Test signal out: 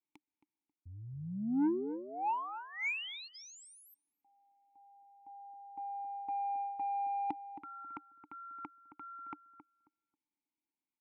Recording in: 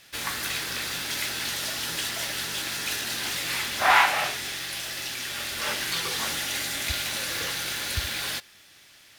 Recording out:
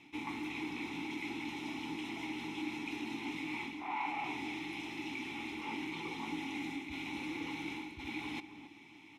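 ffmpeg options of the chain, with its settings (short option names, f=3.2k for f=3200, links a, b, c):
-filter_complex "[0:a]lowshelf=f=350:g=10.5,areverse,acompressor=threshold=-34dB:ratio=10,areverse,asplit=3[a][b][c];[a]bandpass=f=300:t=q:w=8,volume=0dB[d];[b]bandpass=f=870:t=q:w=8,volume=-6dB[e];[c]bandpass=f=2.24k:t=q:w=8,volume=-9dB[f];[d][e][f]amix=inputs=3:normalize=0,asoftclip=type=tanh:threshold=-38.5dB,asuperstop=centerf=4600:order=12:qfactor=7.9,asplit=2[g][h];[h]adelay=270,lowpass=f=1.2k:p=1,volume=-10.5dB,asplit=2[i][j];[j]adelay=270,lowpass=f=1.2k:p=1,volume=0.22,asplit=2[k][l];[l]adelay=270,lowpass=f=1.2k:p=1,volume=0.22[m];[g][i][k][m]amix=inputs=4:normalize=0,volume=12.5dB"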